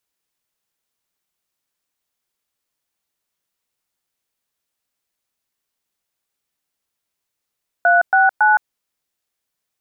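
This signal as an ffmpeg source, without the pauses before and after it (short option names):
-f lavfi -i "aevalsrc='0.237*clip(min(mod(t,0.278),0.165-mod(t,0.278))/0.002,0,1)*(eq(floor(t/0.278),0)*(sin(2*PI*697*mod(t,0.278))+sin(2*PI*1477*mod(t,0.278)))+eq(floor(t/0.278),1)*(sin(2*PI*770*mod(t,0.278))+sin(2*PI*1477*mod(t,0.278)))+eq(floor(t/0.278),2)*(sin(2*PI*852*mod(t,0.278))+sin(2*PI*1477*mod(t,0.278))))':d=0.834:s=44100"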